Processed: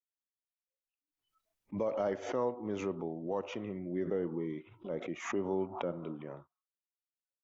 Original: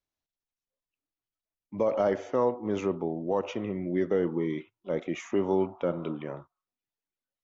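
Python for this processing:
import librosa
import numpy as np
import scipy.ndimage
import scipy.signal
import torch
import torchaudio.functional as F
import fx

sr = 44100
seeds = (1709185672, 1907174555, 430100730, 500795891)

y = fx.noise_reduce_blind(x, sr, reduce_db=26)
y = fx.high_shelf(y, sr, hz=2300.0, db=-9.0, at=(3.79, 6.31))
y = fx.pre_swell(y, sr, db_per_s=95.0)
y = y * librosa.db_to_amplitude(-7.5)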